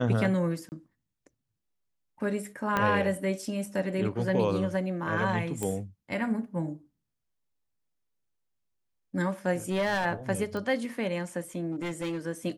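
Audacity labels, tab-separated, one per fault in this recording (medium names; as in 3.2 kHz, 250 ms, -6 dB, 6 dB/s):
0.690000	0.720000	dropout 29 ms
2.770000	2.770000	pop -13 dBFS
5.630000	5.630000	pop -18 dBFS
9.690000	10.060000	clipped -23.5 dBFS
10.570000	10.570000	pop -23 dBFS
11.710000	12.190000	clipped -29 dBFS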